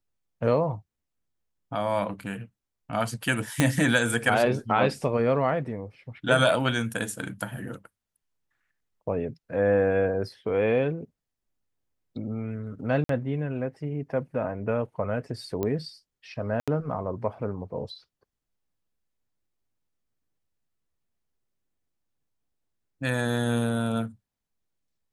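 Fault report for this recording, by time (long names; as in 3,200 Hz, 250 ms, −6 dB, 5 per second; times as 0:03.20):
0:03.60: click −6 dBFS
0:13.04–0:13.09: drop-out 53 ms
0:15.63: click −16 dBFS
0:16.60–0:16.68: drop-out 76 ms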